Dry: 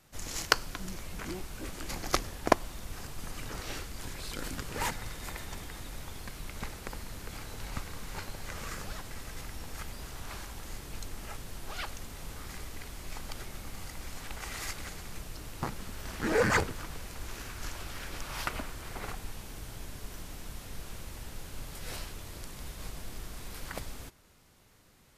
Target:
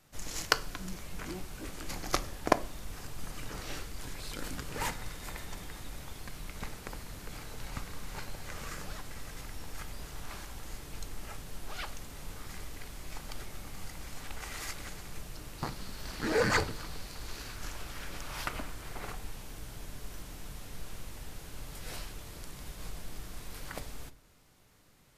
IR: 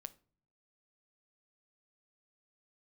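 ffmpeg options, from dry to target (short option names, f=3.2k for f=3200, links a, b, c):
-filter_complex "[0:a]asettb=1/sr,asplit=3[a][b][c];[a]atrim=end=15.584[d];[b]atrim=start=15.58:end=17.56,asetpts=PTS-STARTPTS,afade=t=in:d=0.004:c=qsin,afade=t=out:st=1.976:d=0.004:c=qsin,equalizer=f=4.4k:w=3.2:g=7.5[e];[c]atrim=start=17.556[f];[d][e]acrossfade=d=0.004:c1=hsin:c2=qsin[g];[g][f]acrossfade=d=0.004:c1=qsin:c2=hsin[h];[1:a]atrim=start_sample=2205[i];[h][i]afir=irnorm=-1:irlink=0,volume=3.5dB"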